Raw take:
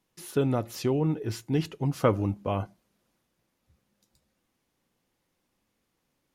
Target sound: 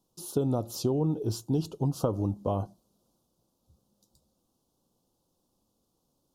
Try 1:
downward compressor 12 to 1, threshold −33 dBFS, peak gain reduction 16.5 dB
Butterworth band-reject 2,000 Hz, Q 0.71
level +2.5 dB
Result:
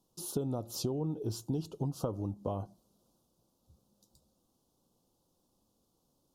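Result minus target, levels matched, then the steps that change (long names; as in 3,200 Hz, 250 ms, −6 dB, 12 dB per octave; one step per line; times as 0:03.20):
downward compressor: peak gain reduction +7.5 dB
change: downward compressor 12 to 1, threshold −25 dBFS, peak gain reduction 9 dB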